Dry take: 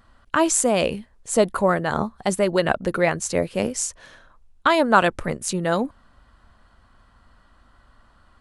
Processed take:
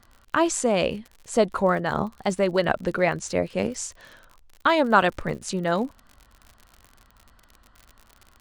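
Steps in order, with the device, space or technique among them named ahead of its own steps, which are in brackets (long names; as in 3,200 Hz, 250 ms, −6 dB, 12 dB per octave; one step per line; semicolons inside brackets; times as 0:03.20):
lo-fi chain (low-pass filter 6,200 Hz 12 dB per octave; tape wow and flutter; surface crackle 62 per second −33 dBFS)
level −2 dB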